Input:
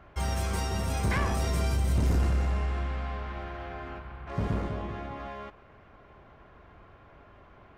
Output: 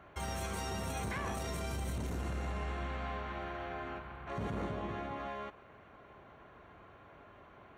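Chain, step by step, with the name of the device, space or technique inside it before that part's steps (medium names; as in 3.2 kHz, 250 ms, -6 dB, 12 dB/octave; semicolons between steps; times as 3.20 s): PA system with an anti-feedback notch (high-pass 140 Hz 6 dB/octave; Butterworth band-stop 5 kHz, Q 6.7; peak limiter -28.5 dBFS, peak gain reduction 10.5 dB); trim -1 dB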